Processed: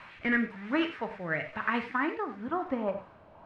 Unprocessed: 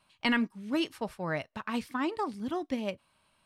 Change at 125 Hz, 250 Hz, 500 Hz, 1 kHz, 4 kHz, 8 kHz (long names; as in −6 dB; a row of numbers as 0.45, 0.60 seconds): −1.5 dB, −0.5 dB, +1.5 dB, +2.5 dB, −5.5 dB, below −15 dB